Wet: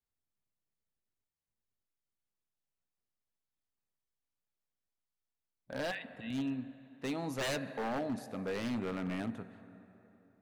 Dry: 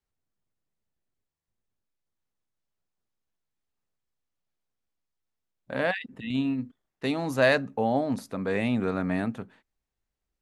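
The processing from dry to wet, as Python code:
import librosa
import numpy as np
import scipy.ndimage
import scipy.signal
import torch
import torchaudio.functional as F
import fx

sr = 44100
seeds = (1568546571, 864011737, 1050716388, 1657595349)

y = fx.rev_plate(x, sr, seeds[0], rt60_s=3.4, hf_ratio=0.7, predelay_ms=0, drr_db=14.0)
y = 10.0 ** (-21.5 / 20.0) * (np.abs((y / 10.0 ** (-21.5 / 20.0) + 3.0) % 4.0 - 2.0) - 1.0)
y = y * 10.0 ** (-8.0 / 20.0)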